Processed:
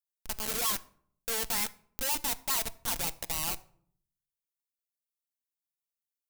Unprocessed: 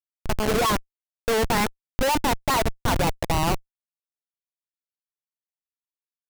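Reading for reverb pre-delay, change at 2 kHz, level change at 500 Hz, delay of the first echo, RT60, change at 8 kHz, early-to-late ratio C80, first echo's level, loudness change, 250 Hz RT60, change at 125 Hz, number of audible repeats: 4 ms, −10.5 dB, −18.0 dB, no echo audible, 0.60 s, +0.5 dB, 23.5 dB, no echo audible, −7.0 dB, 0.80 s, −20.5 dB, no echo audible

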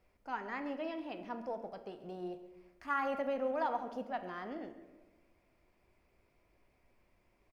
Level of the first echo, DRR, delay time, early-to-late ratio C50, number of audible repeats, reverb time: −17.0 dB, 7.5 dB, 137 ms, 10.0 dB, 1, 1.3 s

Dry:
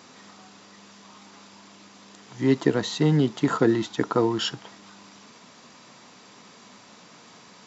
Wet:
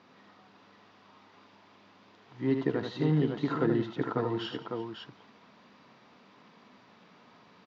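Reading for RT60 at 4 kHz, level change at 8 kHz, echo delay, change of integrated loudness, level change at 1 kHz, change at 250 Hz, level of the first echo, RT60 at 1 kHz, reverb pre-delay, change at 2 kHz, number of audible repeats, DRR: no reverb audible, can't be measured, 78 ms, −7.5 dB, −7.0 dB, −6.5 dB, −6.0 dB, no reverb audible, no reverb audible, −7.5 dB, 4, no reverb audible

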